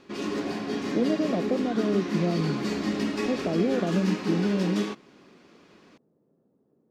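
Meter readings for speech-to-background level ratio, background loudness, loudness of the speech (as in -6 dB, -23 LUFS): 2.0 dB, -30.5 LUFS, -28.5 LUFS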